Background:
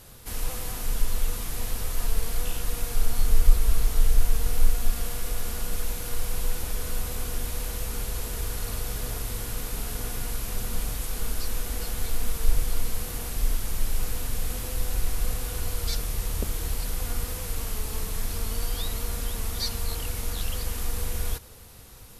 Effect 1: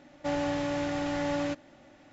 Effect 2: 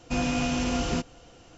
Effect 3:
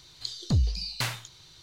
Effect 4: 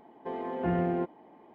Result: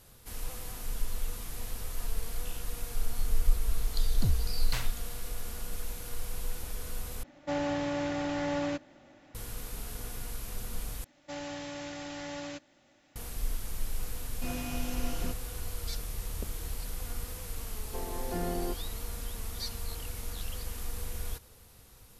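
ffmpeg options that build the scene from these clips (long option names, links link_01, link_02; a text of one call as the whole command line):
ffmpeg -i bed.wav -i cue0.wav -i cue1.wav -i cue2.wav -i cue3.wav -filter_complex "[1:a]asplit=2[link_01][link_02];[0:a]volume=-8dB[link_03];[link_02]highshelf=frequency=2500:gain=12[link_04];[4:a]highpass=180[link_05];[link_03]asplit=3[link_06][link_07][link_08];[link_06]atrim=end=7.234[link_09];[link_01]atrim=end=2.12,asetpts=PTS-STARTPTS,volume=-1.5dB[link_10];[link_07]atrim=start=9.346:end=11.044[link_11];[link_04]atrim=end=2.12,asetpts=PTS-STARTPTS,volume=-11dB[link_12];[link_08]atrim=start=13.156[link_13];[3:a]atrim=end=1.62,asetpts=PTS-STARTPTS,volume=-6.5dB,afade=type=in:duration=0.004:curve=hsin,afade=type=out:start_time=1.616:duration=0.004:curve=hsin,adelay=3720[link_14];[2:a]atrim=end=1.57,asetpts=PTS-STARTPTS,volume=-11.5dB,afade=type=in:duration=0.004:curve=hsin,afade=type=out:start_time=1.566:duration=0.004:curve=hsin,adelay=14310[link_15];[link_05]atrim=end=1.54,asetpts=PTS-STARTPTS,volume=-5.5dB,afade=type=in:duration=0.004:curve=hsin,afade=type=out:start_time=1.536:duration=0.004:curve=hsin,adelay=17680[link_16];[link_09][link_10]acrossfade=duration=0.004:curve1=hsin:curve2=hsin[link_17];[link_17][link_11]acrossfade=duration=0.004:curve1=hsin:curve2=hsin[link_18];[link_18][link_12]acrossfade=duration=0.004:curve1=hsin:curve2=hsin[link_19];[link_19][link_13]acrossfade=duration=0.004:curve1=hsin:curve2=hsin[link_20];[link_20][link_14][link_15][link_16]amix=inputs=4:normalize=0" out.wav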